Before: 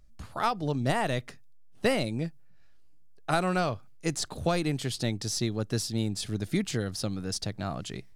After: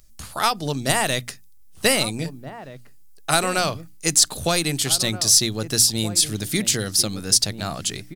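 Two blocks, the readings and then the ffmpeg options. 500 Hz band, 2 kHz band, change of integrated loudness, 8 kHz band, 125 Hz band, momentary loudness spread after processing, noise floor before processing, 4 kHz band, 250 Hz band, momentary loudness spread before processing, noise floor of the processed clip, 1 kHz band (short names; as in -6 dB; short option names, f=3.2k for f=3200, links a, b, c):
+4.5 dB, +9.0 dB, +10.5 dB, +19.0 dB, +3.0 dB, 14 LU, -49 dBFS, +15.0 dB, +3.0 dB, 7 LU, -45 dBFS, +6.0 dB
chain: -filter_complex "[0:a]crystalizer=i=5.5:c=0,bandreject=f=60:t=h:w=6,bandreject=f=120:t=h:w=6,bandreject=f=180:t=h:w=6,bandreject=f=240:t=h:w=6,bandreject=f=300:t=h:w=6,asplit=2[a][b];[b]adelay=1574,volume=-12dB,highshelf=f=4k:g=-35.4[c];[a][c]amix=inputs=2:normalize=0,volume=3.5dB"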